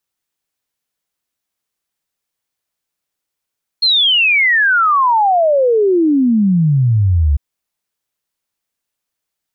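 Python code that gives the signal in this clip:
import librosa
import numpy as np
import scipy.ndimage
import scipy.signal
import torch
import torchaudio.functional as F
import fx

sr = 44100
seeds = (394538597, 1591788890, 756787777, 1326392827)

y = fx.ess(sr, length_s=3.55, from_hz=4300.0, to_hz=68.0, level_db=-9.0)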